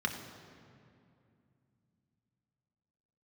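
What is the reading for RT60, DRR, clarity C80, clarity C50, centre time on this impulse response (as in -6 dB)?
2.5 s, 2.5 dB, 8.0 dB, 7.0 dB, 36 ms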